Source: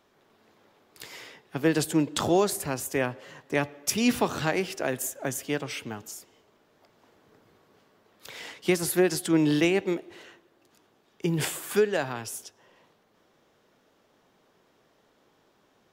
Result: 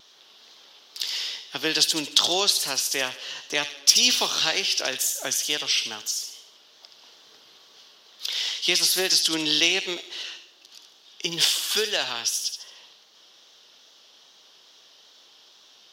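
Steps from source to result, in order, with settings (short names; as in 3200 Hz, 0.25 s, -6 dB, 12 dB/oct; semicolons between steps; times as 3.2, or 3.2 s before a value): HPF 1200 Hz 6 dB/oct; band shelf 4200 Hz +14 dB 1.3 oct; in parallel at +0.5 dB: compressor, threshold -37 dBFS, peak gain reduction 23.5 dB; on the sum: wow and flutter 41 cents; soft clip -3.5 dBFS, distortion -25 dB; on a send: thin delay 74 ms, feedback 40%, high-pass 2500 Hz, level -6.5 dB; on the sum: gain +1.5 dB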